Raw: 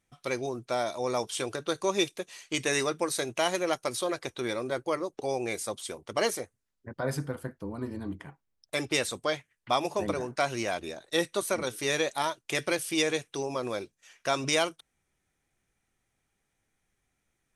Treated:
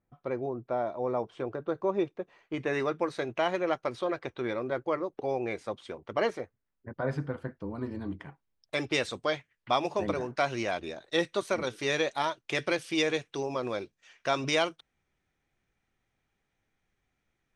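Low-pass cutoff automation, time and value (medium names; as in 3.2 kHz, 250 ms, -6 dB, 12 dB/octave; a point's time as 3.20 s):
2.44 s 1.1 kHz
2.91 s 2.3 kHz
7.02 s 2.3 kHz
7.86 s 4.5 kHz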